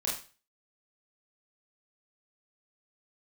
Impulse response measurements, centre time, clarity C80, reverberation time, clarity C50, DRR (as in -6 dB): 37 ms, 10.0 dB, 0.35 s, 4.5 dB, -5.0 dB